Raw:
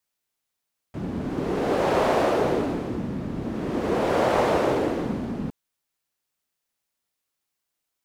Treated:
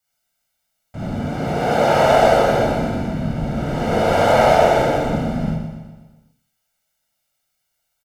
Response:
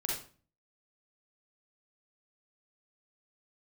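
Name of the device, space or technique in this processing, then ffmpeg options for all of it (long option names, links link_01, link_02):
microphone above a desk: -filter_complex "[0:a]asettb=1/sr,asplit=3[link_01][link_02][link_03];[link_01]atrim=end=1.114[link_04];[link_02]atrim=start=1.11:end=2.05,asetpts=PTS-STARTPTS,afade=type=in:duration=0.004:curve=qsin,afade=type=out:start_time=0.936:duration=0.004:curve=qsin,highpass=79[link_05];[link_03]atrim=start=2.046[link_06];[link_04][link_05]acrossfade=duration=0.004:curve1=hsin:curve2=qsin[link_07];[link_07][link_06]acrossfade=duration=0.004:curve1=qsin:curve2=hsin,aecho=1:1:1.4:0.73[link_08];[1:a]atrim=start_sample=2205[link_09];[link_08][link_09]afir=irnorm=-1:irlink=0,aecho=1:1:123|246|369|492|615|738:0.376|0.203|0.11|0.0592|0.032|0.0173,volume=2dB"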